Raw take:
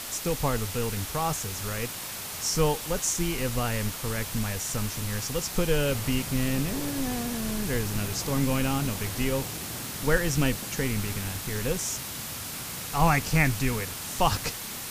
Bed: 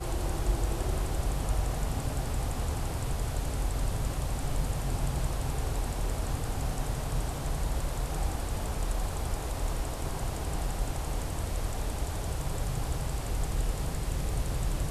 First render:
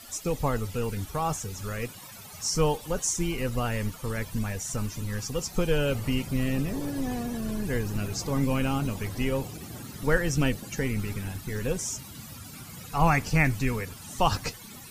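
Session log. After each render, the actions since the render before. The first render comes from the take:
broadband denoise 15 dB, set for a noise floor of −37 dBFS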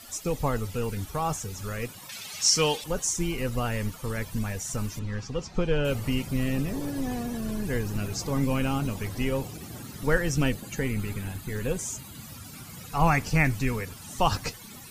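0:02.09–0:02.84: meter weighting curve D
0:04.99–0:05.85: high-frequency loss of the air 140 metres
0:10.56–0:12.24: notch filter 5,500 Hz, Q 5.8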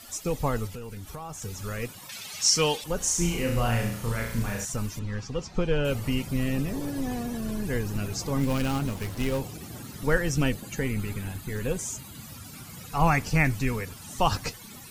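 0:00.67–0:01.42: downward compressor, threshold −35 dBFS
0:02.97–0:04.65: flutter between parallel walls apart 5.9 metres, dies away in 0.62 s
0:08.39–0:09.40: gap after every zero crossing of 0.13 ms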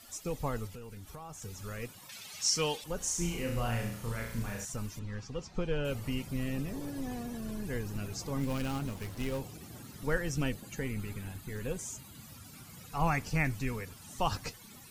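level −7.5 dB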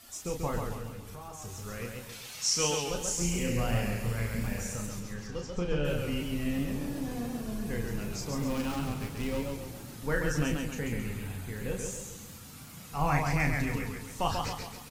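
double-tracking delay 34 ms −5 dB
feedback echo with a swinging delay time 136 ms, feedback 48%, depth 103 cents, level −4 dB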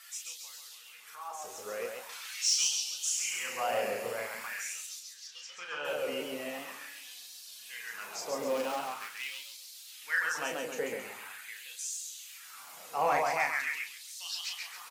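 auto-filter high-pass sine 0.44 Hz 490–4,300 Hz
soft clipping −17.5 dBFS, distortion −23 dB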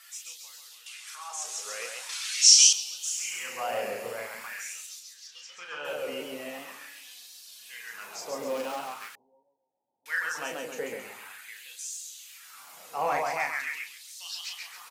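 0:00.86–0:02.73: meter weighting curve ITU-R 468
0:09.15–0:10.06: Chebyshev low-pass filter 930 Hz, order 8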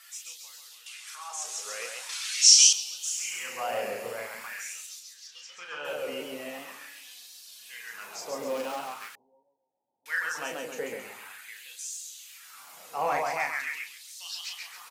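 no processing that can be heard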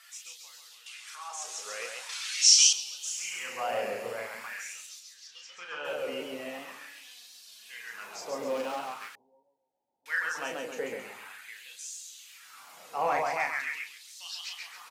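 high-shelf EQ 7,800 Hz −8.5 dB
mains-hum notches 50/100/150 Hz

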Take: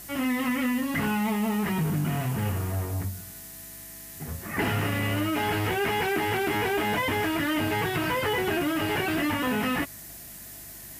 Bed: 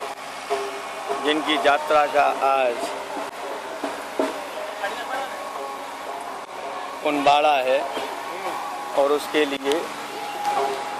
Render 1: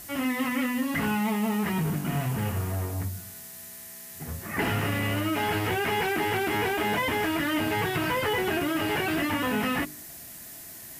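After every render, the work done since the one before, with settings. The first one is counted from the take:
hum removal 50 Hz, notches 8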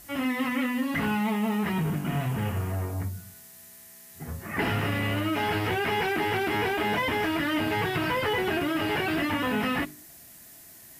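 noise reduction from a noise print 6 dB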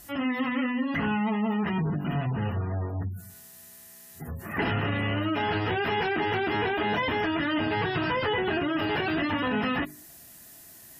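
notch filter 2,200 Hz, Q 13
gate on every frequency bin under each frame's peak −30 dB strong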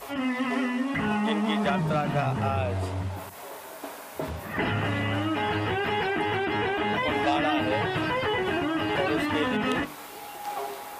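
mix in bed −10.5 dB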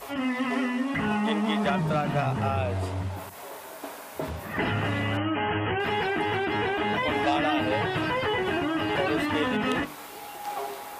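0:05.17–0:05.80: linear-phase brick-wall low-pass 3,300 Hz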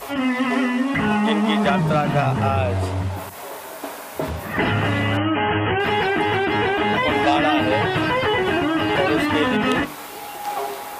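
level +7 dB

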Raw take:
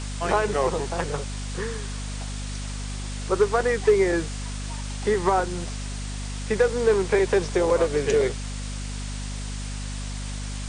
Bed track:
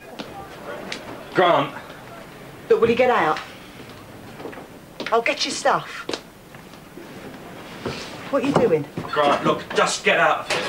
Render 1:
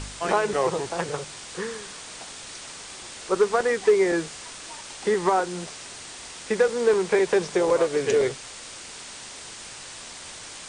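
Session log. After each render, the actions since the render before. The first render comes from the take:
hum removal 50 Hz, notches 5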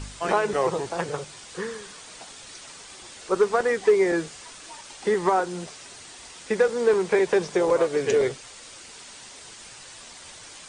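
broadband denoise 6 dB, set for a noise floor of −41 dBFS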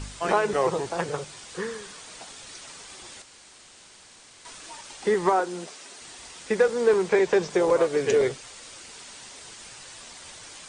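0:03.22–0:04.45: fill with room tone
0:05.32–0:06.02: Chebyshev high-pass filter 260 Hz
0:07.09–0:07.50: Butterworth low-pass 8,500 Hz 48 dB per octave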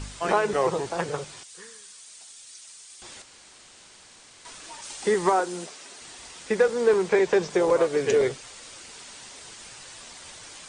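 0:01.43–0:03.02: first-order pre-emphasis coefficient 0.9
0:04.81–0:05.66: high-shelf EQ 4,900 Hz → 7,800 Hz +9 dB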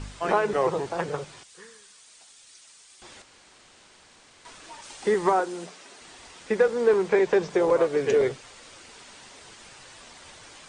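high-shelf EQ 4,400 Hz −9 dB
mains-hum notches 60/120/180 Hz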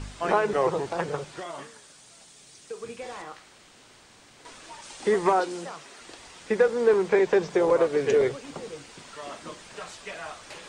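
mix in bed track −21.5 dB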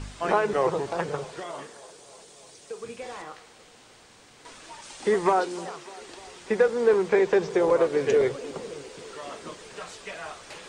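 delay with a band-pass on its return 299 ms, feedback 71%, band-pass 580 Hz, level −20 dB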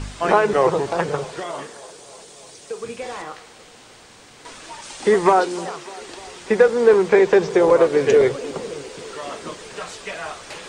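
level +7 dB

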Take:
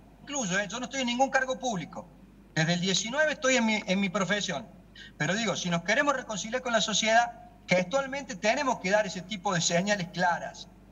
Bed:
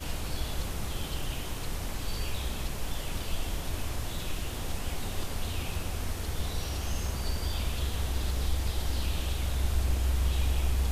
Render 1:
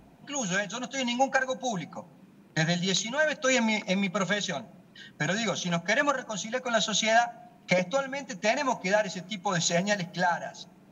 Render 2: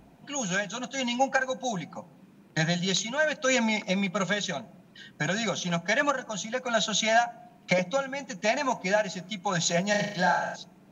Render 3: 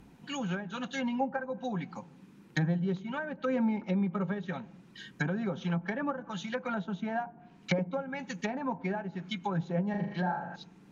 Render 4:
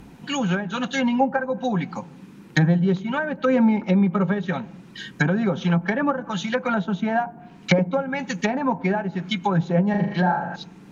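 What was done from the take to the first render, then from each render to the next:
hum removal 50 Hz, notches 2
0:09.90–0:10.56: flutter between parallel walls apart 6.7 metres, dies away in 0.63 s
treble cut that deepens with the level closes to 760 Hz, closed at −24.5 dBFS; parametric band 640 Hz −14 dB 0.37 octaves
level +11 dB

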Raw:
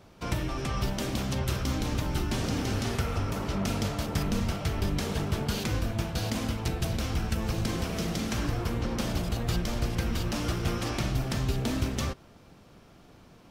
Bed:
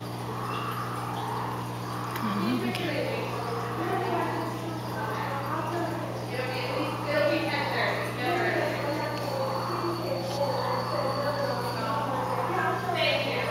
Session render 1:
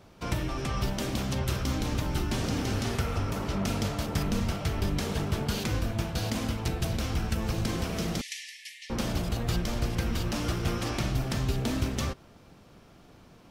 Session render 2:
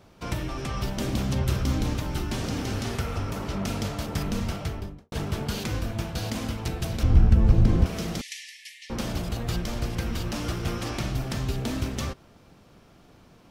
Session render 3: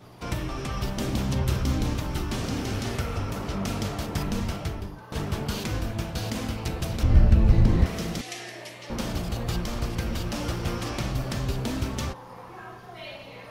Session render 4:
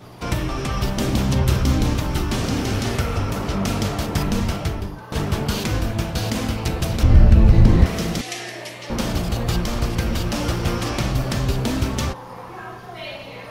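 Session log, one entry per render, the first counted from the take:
0:08.21–0:08.90: linear-phase brick-wall band-pass 1,700–12,000 Hz
0:00.97–0:01.93: low-shelf EQ 350 Hz +5.5 dB; 0:04.55–0:05.12: fade out and dull; 0:07.03–0:07.86: spectral tilt −3.5 dB per octave
mix in bed −15 dB
level +7 dB; brickwall limiter −2 dBFS, peak gain reduction 3 dB

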